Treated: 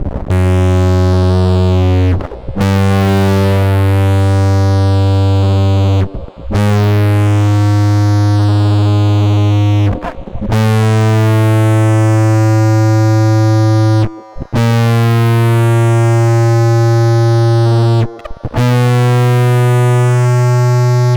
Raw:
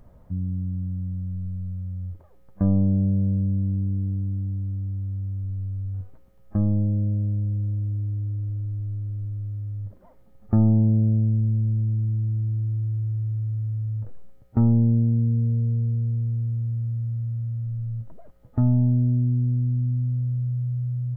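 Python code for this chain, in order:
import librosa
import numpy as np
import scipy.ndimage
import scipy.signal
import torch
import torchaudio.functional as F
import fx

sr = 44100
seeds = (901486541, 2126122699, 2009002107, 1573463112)

y = fx.spec_gate(x, sr, threshold_db=-25, keep='strong')
y = fx.fuzz(y, sr, gain_db=49.0, gate_db=-51.0)
y = fx.echo_stepped(y, sr, ms=150, hz=400.0, octaves=0.7, feedback_pct=70, wet_db=-10)
y = y * librosa.db_to_amplitude(4.5)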